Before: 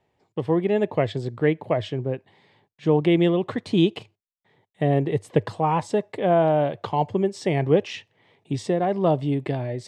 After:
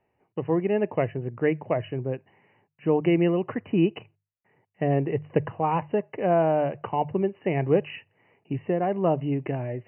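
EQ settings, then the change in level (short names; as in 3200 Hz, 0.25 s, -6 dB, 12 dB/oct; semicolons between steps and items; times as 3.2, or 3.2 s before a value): brick-wall FIR low-pass 3000 Hz; notches 50/100/150 Hz; -2.5 dB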